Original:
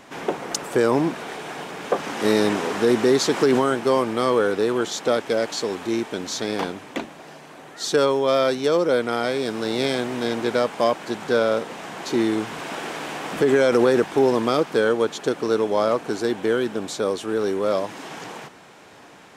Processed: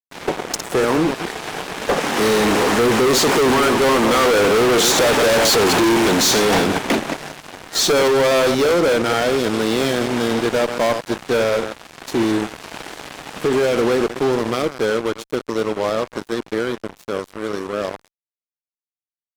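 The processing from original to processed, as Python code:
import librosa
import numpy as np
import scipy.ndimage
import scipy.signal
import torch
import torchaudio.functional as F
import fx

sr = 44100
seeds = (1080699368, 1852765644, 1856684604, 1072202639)

y = fx.reverse_delay(x, sr, ms=116, wet_db=-11)
y = fx.doppler_pass(y, sr, speed_mps=5, closest_m=3.3, pass_at_s=5.49)
y = fx.fuzz(y, sr, gain_db=40.0, gate_db=-50.0)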